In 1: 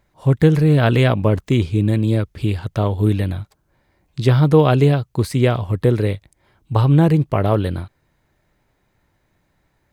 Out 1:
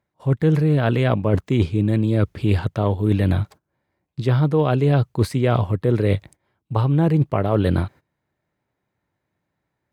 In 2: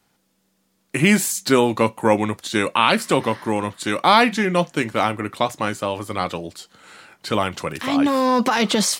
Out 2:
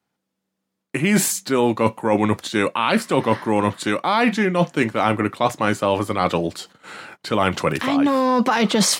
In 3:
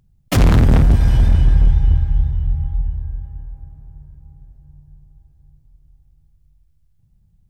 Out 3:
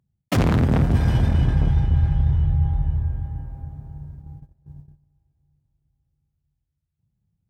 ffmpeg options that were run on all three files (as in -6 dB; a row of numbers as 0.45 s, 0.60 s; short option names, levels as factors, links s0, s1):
-af "highpass=91,agate=range=0.112:threshold=0.00447:ratio=16:detection=peak,highshelf=f=3500:g=-7,areverse,acompressor=threshold=0.0708:ratio=12,areverse,volume=2.82"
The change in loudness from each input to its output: -3.0 LU, 0.0 LU, -4.5 LU